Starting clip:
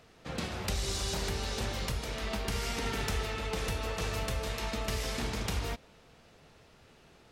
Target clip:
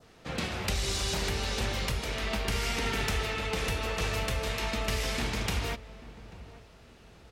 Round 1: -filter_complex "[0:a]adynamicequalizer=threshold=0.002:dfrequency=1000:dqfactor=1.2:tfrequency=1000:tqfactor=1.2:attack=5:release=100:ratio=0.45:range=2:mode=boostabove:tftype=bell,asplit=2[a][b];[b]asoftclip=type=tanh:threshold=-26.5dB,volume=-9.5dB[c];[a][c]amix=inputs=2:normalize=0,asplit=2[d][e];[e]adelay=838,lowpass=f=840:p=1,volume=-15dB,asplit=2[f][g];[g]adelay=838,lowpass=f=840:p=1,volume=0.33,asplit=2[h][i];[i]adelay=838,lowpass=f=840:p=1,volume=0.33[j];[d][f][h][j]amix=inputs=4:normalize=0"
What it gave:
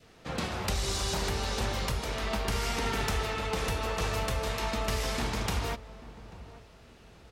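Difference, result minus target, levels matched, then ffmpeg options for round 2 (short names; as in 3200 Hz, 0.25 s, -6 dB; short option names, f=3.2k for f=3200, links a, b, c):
1000 Hz band +3.0 dB
-filter_complex "[0:a]adynamicequalizer=threshold=0.002:dfrequency=2400:dqfactor=1.2:tfrequency=2400:tqfactor=1.2:attack=5:release=100:ratio=0.45:range=2:mode=boostabove:tftype=bell,asplit=2[a][b];[b]asoftclip=type=tanh:threshold=-26.5dB,volume=-9.5dB[c];[a][c]amix=inputs=2:normalize=0,asplit=2[d][e];[e]adelay=838,lowpass=f=840:p=1,volume=-15dB,asplit=2[f][g];[g]adelay=838,lowpass=f=840:p=1,volume=0.33,asplit=2[h][i];[i]adelay=838,lowpass=f=840:p=1,volume=0.33[j];[d][f][h][j]amix=inputs=4:normalize=0"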